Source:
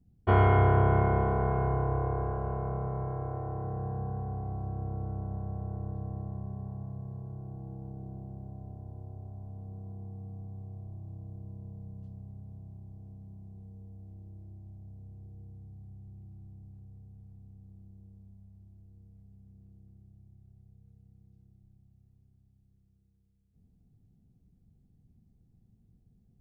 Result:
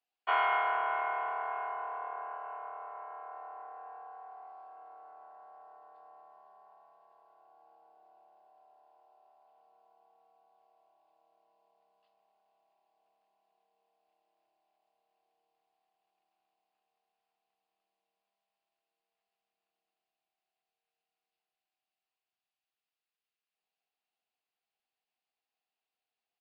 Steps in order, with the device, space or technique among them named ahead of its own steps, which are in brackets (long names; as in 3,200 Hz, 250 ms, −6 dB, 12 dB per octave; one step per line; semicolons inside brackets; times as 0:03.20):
musical greeting card (downsampling to 11,025 Hz; high-pass filter 820 Hz 24 dB per octave; parametric band 2,700 Hz +8 dB 0.36 octaves)
level +1.5 dB